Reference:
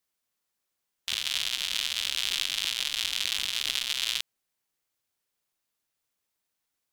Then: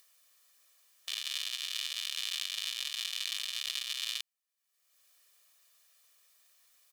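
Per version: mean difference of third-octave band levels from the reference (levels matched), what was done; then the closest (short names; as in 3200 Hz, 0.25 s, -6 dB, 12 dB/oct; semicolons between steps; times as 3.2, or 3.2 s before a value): 5.0 dB: HPF 1400 Hz 6 dB/oct; upward compressor, threshold -41 dBFS; comb 1.7 ms, depth 61%; gain -7.5 dB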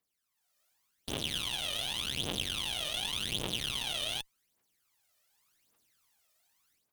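9.0 dB: low shelf 110 Hz -8 dB; AGC gain up to 12 dB; tube stage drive 25 dB, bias 0.5; phaser 0.87 Hz, delay 1.7 ms, feedback 72%; gain -3.5 dB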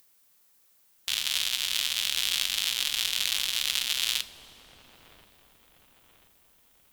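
2.0 dB: high shelf 9900 Hz +10 dB; upward compressor, threshold -51 dBFS; on a send: dark delay 1.033 s, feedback 47%, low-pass 660 Hz, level -5 dB; on the sum: two-slope reverb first 0.28 s, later 3.1 s, from -18 dB, DRR 11.5 dB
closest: third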